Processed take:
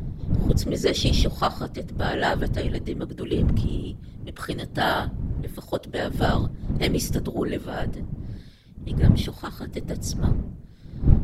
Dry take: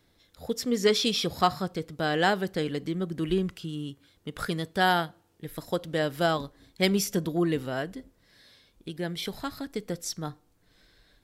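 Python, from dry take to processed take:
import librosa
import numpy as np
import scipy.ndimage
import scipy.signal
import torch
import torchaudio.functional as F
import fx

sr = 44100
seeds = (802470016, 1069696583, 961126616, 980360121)

y = fx.dmg_wind(x, sr, seeds[0], corner_hz=88.0, level_db=-25.0)
y = fx.whisperise(y, sr, seeds[1])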